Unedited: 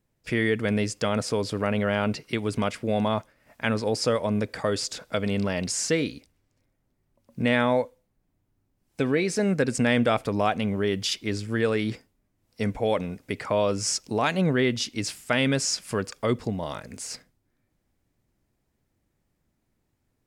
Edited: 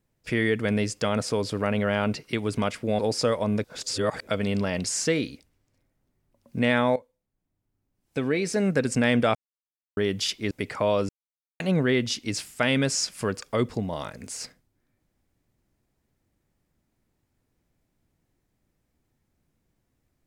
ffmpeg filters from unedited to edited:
ffmpeg -i in.wav -filter_complex "[0:a]asplit=10[link_01][link_02][link_03][link_04][link_05][link_06][link_07][link_08][link_09][link_10];[link_01]atrim=end=2.992[link_11];[link_02]atrim=start=3.818:end=4.472[link_12];[link_03]atrim=start=4.468:end=5.102,asetpts=PTS-STARTPTS,areverse[link_13];[link_04]atrim=start=5.098:end=7.79,asetpts=PTS-STARTPTS,afade=type=out:start_time=2.688:duration=0.004:curve=hsin:silence=0.16788[link_14];[link_05]atrim=start=7.79:end=10.18,asetpts=PTS-STARTPTS,afade=type=in:duration=1.72:silence=0.16788,afade=type=out:start_time=2.386:duration=0.004:curve=hsin[link_15];[link_06]atrim=start=10.18:end=10.8,asetpts=PTS-STARTPTS,volume=0[link_16];[link_07]atrim=start=10.8:end=11.342,asetpts=PTS-STARTPTS,afade=type=in:duration=0.004:curve=hsin[link_17];[link_08]atrim=start=13.208:end=13.79,asetpts=PTS-STARTPTS,afade=type=out:start_time=0.578:duration=0.004:curve=hsin[link_18];[link_09]atrim=start=13.79:end=14.3,asetpts=PTS-STARTPTS,volume=0[link_19];[link_10]atrim=start=14.3,asetpts=PTS-STARTPTS,afade=type=in:duration=0.004:curve=hsin[link_20];[link_11][link_12]acrossfade=duration=0.004:curve1=hsin:curve2=hsin[link_21];[link_21][link_13]acrossfade=duration=0.004:curve1=hsin:curve2=hsin[link_22];[link_14][link_15][link_16][link_17]concat=n=4:v=0:a=1[link_23];[link_22][link_23]acrossfade=duration=0.004:curve1=hsin:curve2=hsin[link_24];[link_18][link_19][link_20]concat=n=3:v=0:a=1[link_25];[link_24][link_25]acrossfade=duration=0.004:curve1=hsin:curve2=hsin" out.wav

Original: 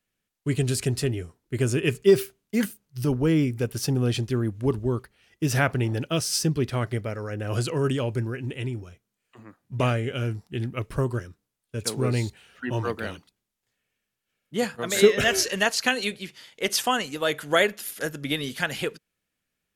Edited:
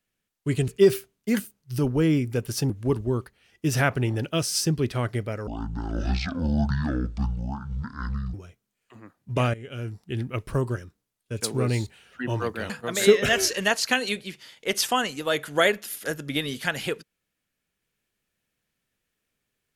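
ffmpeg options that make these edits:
ffmpeg -i in.wav -filter_complex "[0:a]asplit=7[link_01][link_02][link_03][link_04][link_05][link_06][link_07];[link_01]atrim=end=0.682[link_08];[link_02]atrim=start=1.938:end=3.962[link_09];[link_03]atrim=start=4.478:end=7.254[link_10];[link_04]atrim=start=7.25:end=8.77,asetpts=PTS-STARTPTS,asetrate=23373,aresample=44100,atrim=end_sample=126475,asetpts=PTS-STARTPTS[link_11];[link_05]atrim=start=8.766:end=9.97,asetpts=PTS-STARTPTS,afade=type=out:start_time=1.2:duration=0.004:curve=hsin:silence=0.158489[link_12];[link_06]atrim=start=9.97:end=13.132,asetpts=PTS-STARTPTS,afade=type=in:duration=0.62:silence=0.158489[link_13];[link_07]atrim=start=14.648[link_14];[link_08][link_09]acrossfade=duration=0.004:curve1=hsin:curve2=hsin[link_15];[link_15][link_10]acrossfade=duration=0.004:curve1=hsin:curve2=hsin[link_16];[link_16][link_11]acrossfade=duration=0.004:curve1=hsin:curve2=hsin[link_17];[link_12][link_13]concat=n=2:v=0:a=1[link_18];[link_17][link_18]acrossfade=duration=0.004:curve1=hsin:curve2=hsin[link_19];[link_19][link_14]acrossfade=duration=0.004:curve1=hsin:curve2=hsin" out.wav

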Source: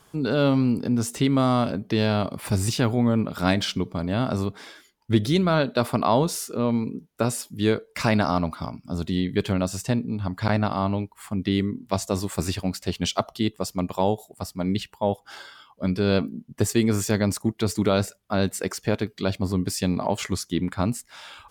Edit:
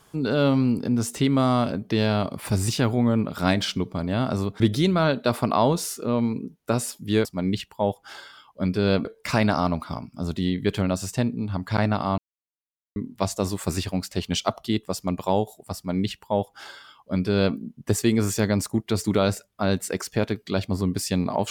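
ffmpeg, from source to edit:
ffmpeg -i in.wav -filter_complex "[0:a]asplit=6[link_01][link_02][link_03][link_04][link_05][link_06];[link_01]atrim=end=4.602[link_07];[link_02]atrim=start=5.108:end=7.762[link_08];[link_03]atrim=start=14.468:end=16.272[link_09];[link_04]atrim=start=7.758:end=10.89,asetpts=PTS-STARTPTS,afade=type=out:start_time=3.128:duration=0.004:curve=hsin[link_10];[link_05]atrim=start=10.89:end=11.67,asetpts=PTS-STARTPTS,volume=0[link_11];[link_06]atrim=start=11.67,asetpts=PTS-STARTPTS,afade=type=in:duration=0.004:curve=hsin[link_12];[link_07][link_08]acrossfade=duration=0.004:curve1=hsin:curve2=hsin[link_13];[link_13][link_09]acrossfade=duration=0.004:curve1=hsin:curve2=hsin[link_14];[link_10][link_11][link_12]concat=n=3:v=0:a=1[link_15];[link_14][link_15]acrossfade=duration=0.004:curve1=hsin:curve2=hsin" out.wav

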